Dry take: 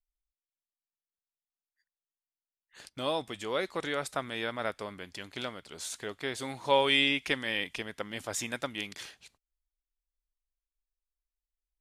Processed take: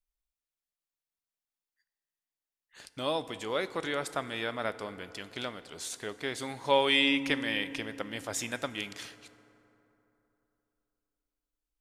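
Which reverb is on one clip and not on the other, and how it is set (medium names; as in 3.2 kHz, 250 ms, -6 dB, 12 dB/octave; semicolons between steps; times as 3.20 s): FDN reverb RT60 3.3 s, high-frequency decay 0.45×, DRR 13.5 dB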